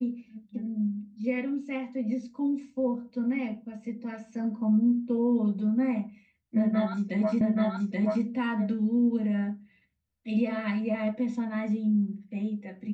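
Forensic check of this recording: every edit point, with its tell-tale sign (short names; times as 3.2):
7.41 repeat of the last 0.83 s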